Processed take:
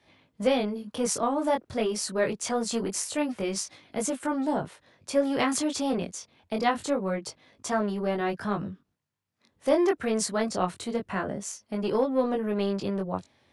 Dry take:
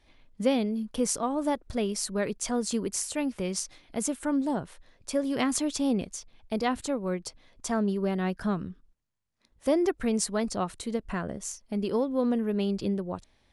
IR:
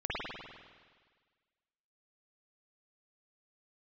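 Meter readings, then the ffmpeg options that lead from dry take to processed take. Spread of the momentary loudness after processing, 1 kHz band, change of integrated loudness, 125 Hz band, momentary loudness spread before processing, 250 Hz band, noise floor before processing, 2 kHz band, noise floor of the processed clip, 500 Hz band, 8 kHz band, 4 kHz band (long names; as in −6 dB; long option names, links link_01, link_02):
9 LU, +4.5 dB, +1.0 dB, −1.0 dB, 9 LU, −1.0 dB, −66 dBFS, +4.0 dB, −74 dBFS, +3.0 dB, 0.0 dB, +2.0 dB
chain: -filter_complex "[0:a]highpass=frequency=90:width=0.5412,highpass=frequency=90:width=1.3066,highshelf=frequency=4700:gain=-6,flanger=delay=19:depth=3.9:speed=0.25,acrossover=split=390|5600[link_01][link_02][link_03];[link_01]asoftclip=type=tanh:threshold=-38dB[link_04];[link_04][link_02][link_03]amix=inputs=3:normalize=0,volume=7.5dB"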